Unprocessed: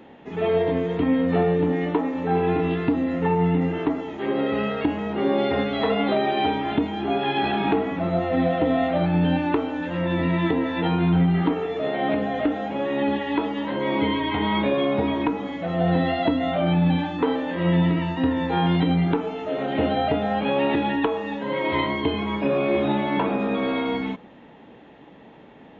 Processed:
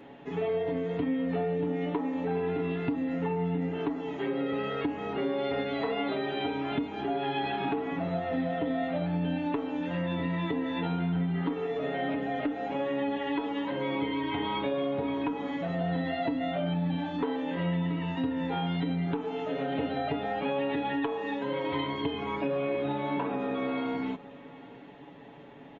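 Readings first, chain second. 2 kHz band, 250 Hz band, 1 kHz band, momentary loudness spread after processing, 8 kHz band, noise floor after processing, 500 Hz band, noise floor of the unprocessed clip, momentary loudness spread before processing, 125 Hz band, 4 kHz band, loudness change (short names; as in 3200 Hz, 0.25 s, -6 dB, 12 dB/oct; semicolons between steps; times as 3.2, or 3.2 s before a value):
-8.0 dB, -8.0 dB, -8.0 dB, 3 LU, n/a, -48 dBFS, -7.5 dB, -47 dBFS, 5 LU, -9.0 dB, -8.0 dB, -8.0 dB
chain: comb 7.1 ms, depth 62%; compressor 3:1, threshold -26 dBFS, peak gain reduction 10 dB; echo 0.802 s -21 dB; gain -3.5 dB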